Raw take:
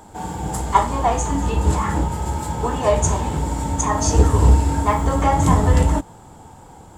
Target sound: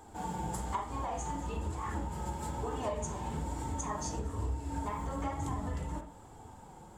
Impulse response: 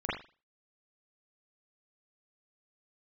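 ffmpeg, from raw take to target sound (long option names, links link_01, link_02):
-filter_complex "[0:a]acompressor=threshold=-23dB:ratio=10,asplit=2[link_01][link_02];[1:a]atrim=start_sample=2205[link_03];[link_02][link_03]afir=irnorm=-1:irlink=0,volume=-10.5dB[link_04];[link_01][link_04]amix=inputs=2:normalize=0,flanger=delay=2.5:depth=3.2:regen=-44:speed=1.1:shape=sinusoidal,volume=-8dB"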